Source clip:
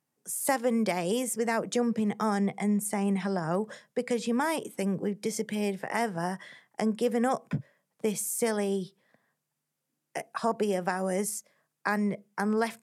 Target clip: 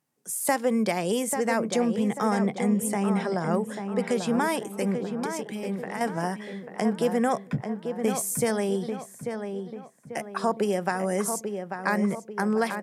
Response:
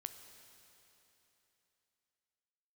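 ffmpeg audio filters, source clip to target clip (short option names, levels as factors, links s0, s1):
-filter_complex "[0:a]asettb=1/sr,asplit=3[s0][s1][s2];[s0]atrim=end=4.944[s3];[s1]atrim=start=4.94:end=6.01,asetpts=PTS-STARTPTS,afade=t=in:d=0.004:c=qsin,afade=t=out:st=1.066:d=0.004:c=qsin,acompressor=threshold=0.02:ratio=6[s4];[s2]atrim=start=6.006[s5];[s3][s4]acrossfade=d=0.004:c1=hsin:c2=qsin[s6];[s6][s5]acrossfade=d=0.004:c1=qsin:c2=hsin,asplit=2[s7][s8];[s8]adelay=841,lowpass=f=2200:p=1,volume=0.473,asplit=2[s9][s10];[s10]adelay=841,lowpass=f=2200:p=1,volume=0.45,asplit=2[s11][s12];[s12]adelay=841,lowpass=f=2200:p=1,volume=0.45,asplit=2[s13][s14];[s14]adelay=841,lowpass=f=2200:p=1,volume=0.45,asplit=2[s15][s16];[s16]adelay=841,lowpass=f=2200:p=1,volume=0.45[s17];[s7][s9][s11][s13][s15][s17]amix=inputs=6:normalize=0,volume=1.33"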